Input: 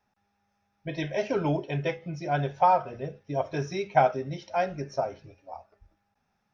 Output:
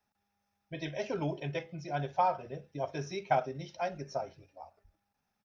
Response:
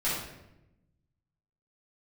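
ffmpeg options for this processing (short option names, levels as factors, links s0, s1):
-filter_complex "[0:a]acrossover=split=220|3000[s0][s1][s2];[s2]acontrast=25[s3];[s0][s1][s3]amix=inputs=3:normalize=0,asplit=2[s4][s5];[s5]adelay=68,lowpass=f=850:p=1,volume=0.119,asplit=2[s6][s7];[s7]adelay=68,lowpass=f=850:p=1,volume=0.29[s8];[s4][s6][s8]amix=inputs=3:normalize=0,atempo=1.2,volume=0.447" -ar 44100 -c:a nellymoser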